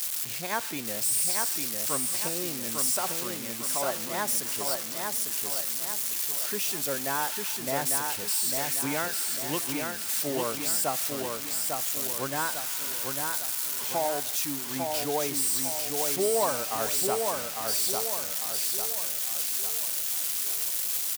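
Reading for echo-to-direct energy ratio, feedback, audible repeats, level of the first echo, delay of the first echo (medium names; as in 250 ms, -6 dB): -3.0 dB, 46%, 5, -4.0 dB, 850 ms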